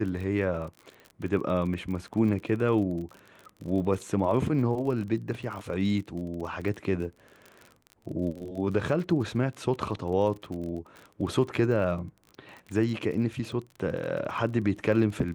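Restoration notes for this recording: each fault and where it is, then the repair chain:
surface crackle 36 per second −36 dBFS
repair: click removal

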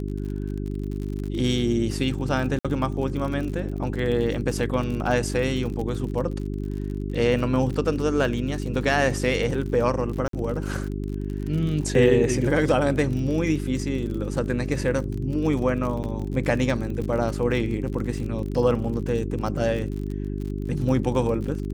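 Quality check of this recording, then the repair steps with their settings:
surface crackle 45 per second −31 dBFS
mains hum 50 Hz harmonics 8 −29 dBFS
0:02.59–0:02.65: drop-out 56 ms
0:10.28–0:10.33: drop-out 53 ms
0:16.03–0:16.04: drop-out 9 ms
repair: click removal
hum removal 50 Hz, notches 8
repair the gap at 0:02.59, 56 ms
repair the gap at 0:10.28, 53 ms
repair the gap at 0:16.03, 9 ms

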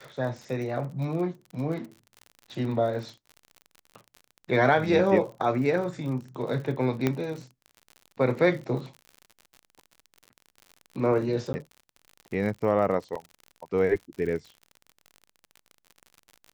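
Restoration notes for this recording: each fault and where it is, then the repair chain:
surface crackle 55 per second −36 dBFS
0:07.07: click −11 dBFS
0:11.53–0:11.54: drop-out 10 ms
0:13.15: drop-out 5 ms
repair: click removal
repair the gap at 0:11.53, 10 ms
repair the gap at 0:13.15, 5 ms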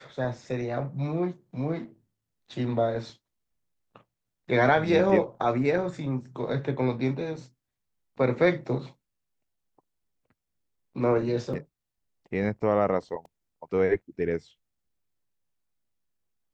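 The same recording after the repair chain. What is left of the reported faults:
0:07.07: click

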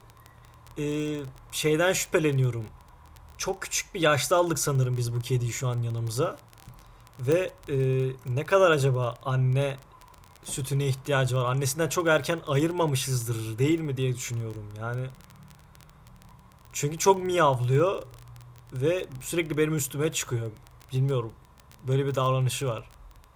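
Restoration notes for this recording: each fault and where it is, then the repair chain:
surface crackle 21 per second −30 dBFS
0:07.32: click −14 dBFS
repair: click removal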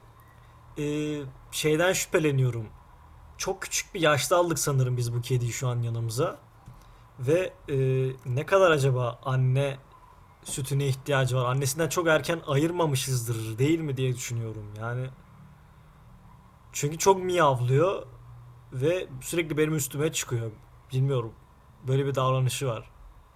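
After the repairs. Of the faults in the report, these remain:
none of them is left

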